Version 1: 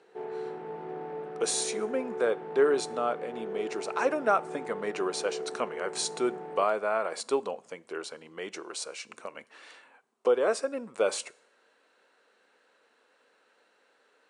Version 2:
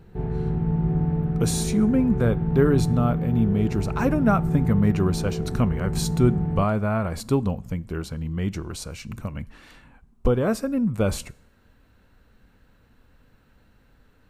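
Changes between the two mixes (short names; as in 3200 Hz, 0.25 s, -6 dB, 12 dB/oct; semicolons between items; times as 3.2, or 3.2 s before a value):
speech: remove steep low-pass 10000 Hz 96 dB/oct; master: remove Chebyshev high-pass 430 Hz, order 3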